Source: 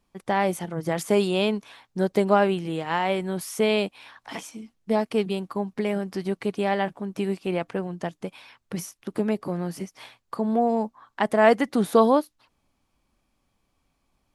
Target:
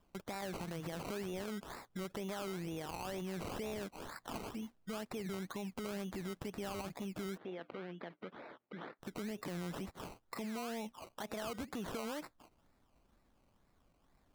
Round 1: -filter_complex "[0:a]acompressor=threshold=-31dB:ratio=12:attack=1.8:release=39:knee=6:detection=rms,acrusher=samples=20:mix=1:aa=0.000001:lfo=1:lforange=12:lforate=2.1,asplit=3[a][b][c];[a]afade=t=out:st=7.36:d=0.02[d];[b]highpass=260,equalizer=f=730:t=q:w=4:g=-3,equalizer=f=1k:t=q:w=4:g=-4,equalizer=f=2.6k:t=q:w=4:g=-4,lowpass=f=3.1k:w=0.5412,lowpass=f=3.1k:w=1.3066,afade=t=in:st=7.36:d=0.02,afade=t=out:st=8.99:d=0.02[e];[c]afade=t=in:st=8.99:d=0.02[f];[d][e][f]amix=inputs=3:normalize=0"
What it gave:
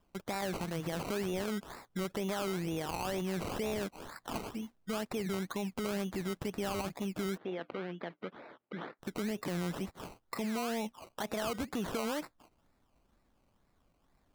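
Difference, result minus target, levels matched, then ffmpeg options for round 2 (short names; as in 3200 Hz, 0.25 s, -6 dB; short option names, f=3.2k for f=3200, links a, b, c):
compressor: peak gain reduction -6.5 dB
-filter_complex "[0:a]acompressor=threshold=-38dB:ratio=12:attack=1.8:release=39:knee=6:detection=rms,acrusher=samples=20:mix=1:aa=0.000001:lfo=1:lforange=12:lforate=2.1,asplit=3[a][b][c];[a]afade=t=out:st=7.36:d=0.02[d];[b]highpass=260,equalizer=f=730:t=q:w=4:g=-3,equalizer=f=1k:t=q:w=4:g=-4,equalizer=f=2.6k:t=q:w=4:g=-4,lowpass=f=3.1k:w=0.5412,lowpass=f=3.1k:w=1.3066,afade=t=in:st=7.36:d=0.02,afade=t=out:st=8.99:d=0.02[e];[c]afade=t=in:st=8.99:d=0.02[f];[d][e][f]amix=inputs=3:normalize=0"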